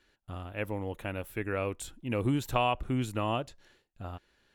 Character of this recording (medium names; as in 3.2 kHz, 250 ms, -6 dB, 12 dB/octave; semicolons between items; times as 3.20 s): noise floor -78 dBFS; spectral tilt -5.0 dB/octave